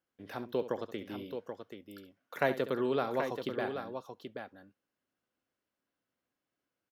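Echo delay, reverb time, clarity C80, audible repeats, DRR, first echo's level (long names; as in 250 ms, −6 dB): 68 ms, no reverb audible, no reverb audible, 2, no reverb audible, −13.0 dB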